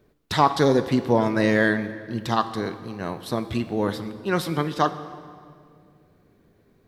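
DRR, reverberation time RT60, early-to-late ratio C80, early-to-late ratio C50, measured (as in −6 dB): 11.0 dB, 2.2 s, 13.5 dB, 12.5 dB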